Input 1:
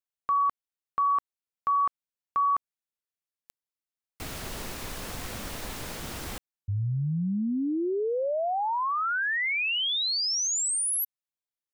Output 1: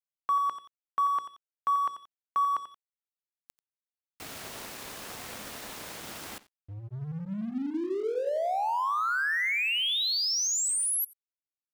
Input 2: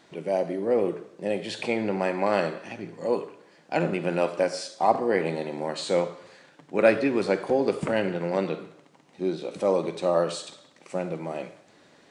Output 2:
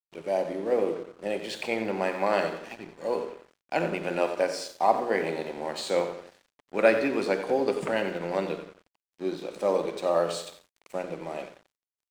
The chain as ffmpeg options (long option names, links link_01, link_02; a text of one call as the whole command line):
ffmpeg -i in.wav -filter_complex "[0:a]highpass=frequency=280:poles=1,bandreject=frequency=60:width_type=h:width=6,bandreject=frequency=120:width_type=h:width=6,bandreject=frequency=180:width_type=h:width=6,bandreject=frequency=240:width_type=h:width=6,bandreject=frequency=300:width_type=h:width=6,bandreject=frequency=360:width_type=h:width=6,bandreject=frequency=420:width_type=h:width=6,bandreject=frequency=480:width_type=h:width=6,bandreject=frequency=540:width_type=h:width=6,asplit=2[link_01][link_02];[link_02]adelay=89,lowpass=frequency=4600:poles=1,volume=-10dB,asplit=2[link_03][link_04];[link_04]adelay=89,lowpass=frequency=4600:poles=1,volume=0.47,asplit=2[link_05][link_06];[link_06]adelay=89,lowpass=frequency=4600:poles=1,volume=0.47,asplit=2[link_07][link_08];[link_08]adelay=89,lowpass=frequency=4600:poles=1,volume=0.47,asplit=2[link_09][link_10];[link_10]adelay=89,lowpass=frequency=4600:poles=1,volume=0.47[link_11];[link_03][link_05][link_07][link_09][link_11]amix=inputs=5:normalize=0[link_12];[link_01][link_12]amix=inputs=2:normalize=0,aeval=exprs='sgn(val(0))*max(abs(val(0))-0.00422,0)':channel_layout=same" out.wav